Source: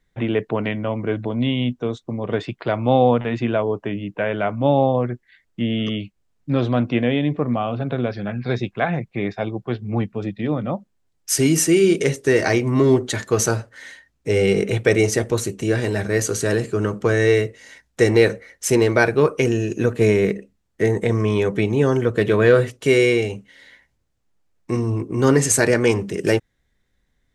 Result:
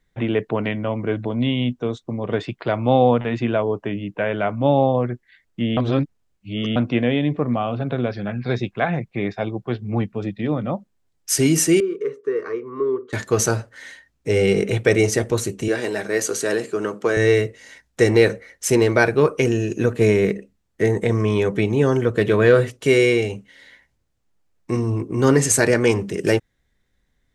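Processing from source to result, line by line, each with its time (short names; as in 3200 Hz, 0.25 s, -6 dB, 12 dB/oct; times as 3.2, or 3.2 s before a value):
5.77–6.76 reverse
11.8–13.13 double band-pass 710 Hz, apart 1.4 oct
15.68–17.17 HPF 280 Hz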